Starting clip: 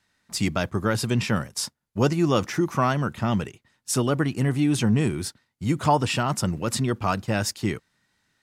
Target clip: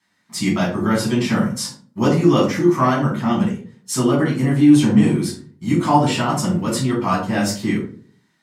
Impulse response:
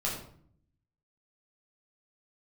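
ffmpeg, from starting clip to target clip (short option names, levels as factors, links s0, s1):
-filter_complex "[0:a]highpass=160[s0];[1:a]atrim=start_sample=2205,asetrate=70560,aresample=44100[s1];[s0][s1]afir=irnorm=-1:irlink=0,volume=1.33"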